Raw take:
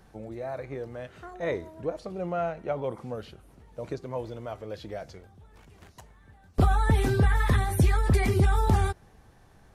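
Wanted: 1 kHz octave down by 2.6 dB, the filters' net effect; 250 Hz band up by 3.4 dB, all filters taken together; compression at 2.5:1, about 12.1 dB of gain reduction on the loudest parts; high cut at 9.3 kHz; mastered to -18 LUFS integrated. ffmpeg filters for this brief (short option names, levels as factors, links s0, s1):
-af "lowpass=9300,equalizer=f=250:t=o:g=5,equalizer=f=1000:t=o:g=-4,acompressor=threshold=0.0178:ratio=2.5,volume=8.91"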